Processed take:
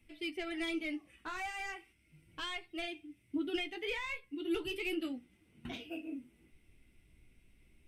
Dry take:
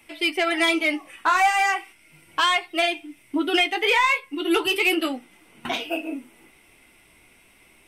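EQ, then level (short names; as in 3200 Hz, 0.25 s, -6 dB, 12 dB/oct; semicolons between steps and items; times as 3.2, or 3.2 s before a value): passive tone stack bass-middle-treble 10-0-1; high shelf 3800 Hz -10.5 dB; +9.0 dB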